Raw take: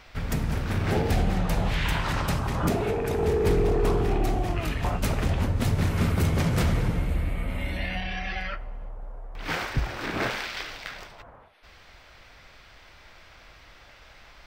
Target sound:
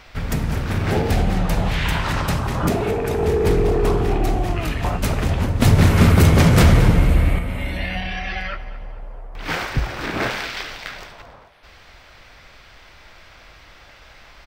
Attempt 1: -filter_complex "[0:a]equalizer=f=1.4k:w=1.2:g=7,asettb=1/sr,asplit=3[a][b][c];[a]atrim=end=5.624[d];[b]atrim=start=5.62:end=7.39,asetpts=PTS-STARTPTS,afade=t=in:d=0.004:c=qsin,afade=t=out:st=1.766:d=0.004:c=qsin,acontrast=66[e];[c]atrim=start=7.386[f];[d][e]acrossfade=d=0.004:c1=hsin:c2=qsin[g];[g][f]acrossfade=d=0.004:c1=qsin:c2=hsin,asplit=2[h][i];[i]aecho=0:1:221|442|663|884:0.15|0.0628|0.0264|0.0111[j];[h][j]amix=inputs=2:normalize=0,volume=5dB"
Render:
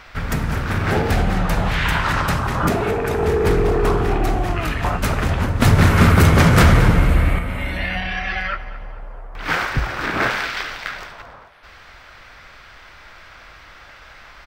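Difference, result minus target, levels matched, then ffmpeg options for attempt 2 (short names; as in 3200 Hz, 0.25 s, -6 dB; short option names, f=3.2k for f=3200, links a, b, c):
1000 Hz band +3.0 dB
-filter_complex "[0:a]asettb=1/sr,asplit=3[a][b][c];[a]atrim=end=5.624[d];[b]atrim=start=5.62:end=7.39,asetpts=PTS-STARTPTS,afade=t=in:d=0.004:c=qsin,afade=t=out:st=1.766:d=0.004:c=qsin,acontrast=66[e];[c]atrim=start=7.386[f];[d][e]acrossfade=d=0.004:c1=hsin:c2=qsin[g];[g][f]acrossfade=d=0.004:c1=qsin:c2=hsin,asplit=2[h][i];[i]aecho=0:1:221|442|663|884:0.15|0.0628|0.0264|0.0111[j];[h][j]amix=inputs=2:normalize=0,volume=5dB"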